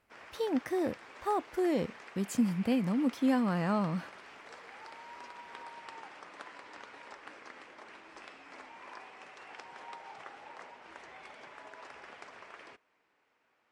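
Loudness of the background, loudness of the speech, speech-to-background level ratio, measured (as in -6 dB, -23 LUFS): -49.5 LUFS, -32.0 LUFS, 17.5 dB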